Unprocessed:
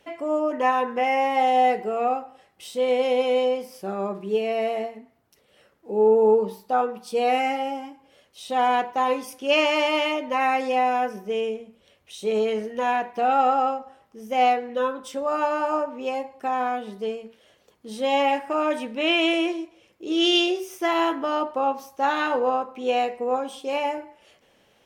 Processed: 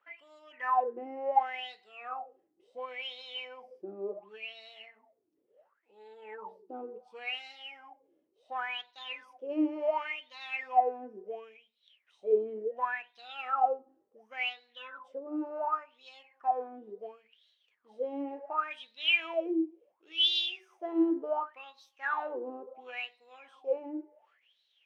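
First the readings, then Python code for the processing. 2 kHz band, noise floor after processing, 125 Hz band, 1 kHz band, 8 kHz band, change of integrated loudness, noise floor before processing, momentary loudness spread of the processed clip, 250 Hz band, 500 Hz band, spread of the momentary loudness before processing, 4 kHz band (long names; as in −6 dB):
−8.5 dB, −76 dBFS, can't be measured, −11.5 dB, below −20 dB, −10.0 dB, −62 dBFS, 18 LU, −9.0 dB, −13.5 dB, 11 LU, −5.5 dB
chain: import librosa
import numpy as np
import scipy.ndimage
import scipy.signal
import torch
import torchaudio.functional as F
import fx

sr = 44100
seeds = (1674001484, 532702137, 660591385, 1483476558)

y = fx.cheby_harmonics(x, sr, harmonics=(6, 7), levels_db=(-33, -43), full_scale_db=-8.0)
y = fx.wah_lfo(y, sr, hz=0.7, low_hz=310.0, high_hz=4000.0, q=13.0)
y = y * 10.0 ** (5.0 / 20.0)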